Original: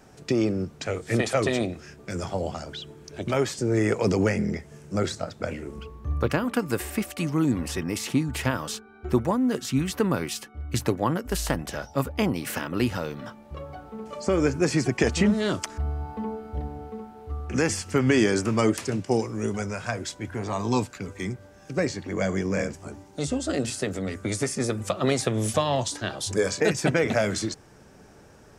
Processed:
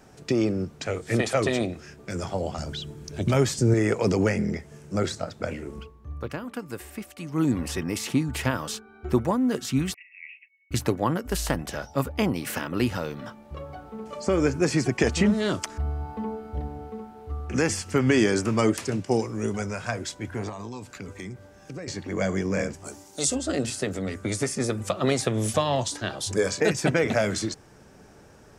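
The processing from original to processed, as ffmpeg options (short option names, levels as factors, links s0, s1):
-filter_complex "[0:a]asettb=1/sr,asplit=3[s0][s1][s2];[s0]atrim=end=2.584[s3];[s1]atrim=start=2.58:end=3.74,asetpts=PTS-STARTPTS,afade=t=in:d=0.004:c=qsin,afade=t=out:st=1.156:d=0.004:c=qsin,bass=f=250:g=9,treble=f=4000:g=5[s4];[s2]atrim=start=3.736[s5];[s3][s4]acrossfade=d=0.004:c1=hsin:c2=qsin[s6];[s6][s5]acrossfade=d=0.004:c1=qsin:c2=hsin,asettb=1/sr,asplit=3[s7][s8][s9];[s7]atrim=end=9.944[s10];[s8]atrim=start=9.94:end=10.71,asetpts=PTS-STARTPTS,afade=t=in:d=0.004:c=qsin,afade=t=out:st=0.766:d=0.004:c=qsin,asuperpass=centerf=2300:order=12:qfactor=2.9[s11];[s9]atrim=start=10.706[s12];[s10][s11]acrossfade=d=0.004:c1=hsin:c2=qsin[s13];[s13][s12]acrossfade=d=0.004:c1=qsin:c2=hsin,asettb=1/sr,asplit=3[s14][s15][s16];[s14]atrim=end=20.494[s17];[s15]atrim=start=20.49:end=21.88,asetpts=PTS-STARTPTS,afade=t=in:d=0.004:c=qsin,afade=t=out:st=1.386:d=0.004:c=qsin,acompressor=threshold=0.0224:ratio=8:attack=3.2:release=140:knee=1:detection=peak[s18];[s16]atrim=start=21.876[s19];[s17][s18]acrossfade=d=0.004:c1=hsin:c2=qsin[s20];[s20][s19]acrossfade=d=0.004:c1=qsin:c2=hsin,asplit=3[s21][s22][s23];[s21]afade=t=out:st=22.84:d=0.02[s24];[s22]bass=f=250:g=-8,treble=f=4000:g=14,afade=t=in:st=22.84:d=0.02,afade=t=out:st=23.34:d=0.02[s25];[s23]afade=t=in:st=23.34:d=0.02[s26];[s24][s25][s26]amix=inputs=3:normalize=0,asplit=3[s27][s28][s29];[s27]atrim=end=5.95,asetpts=PTS-STARTPTS,afade=t=out:st=5.81:d=0.14:c=qua:silence=0.354813[s30];[s28]atrim=start=5.95:end=7.26,asetpts=PTS-STARTPTS,volume=0.355[s31];[s29]atrim=start=7.26,asetpts=PTS-STARTPTS,afade=t=in:d=0.14:c=qua:silence=0.354813[s32];[s30][s31][s32]concat=n=3:v=0:a=1"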